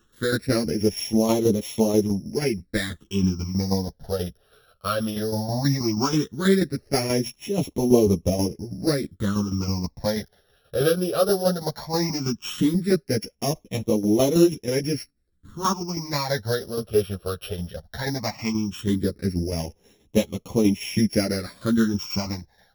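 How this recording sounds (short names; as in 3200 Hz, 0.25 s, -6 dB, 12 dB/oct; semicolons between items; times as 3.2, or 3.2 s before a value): a buzz of ramps at a fixed pitch in blocks of 8 samples; phasing stages 8, 0.16 Hz, lowest notch 270–1500 Hz; tremolo saw down 6.2 Hz, depth 60%; a shimmering, thickened sound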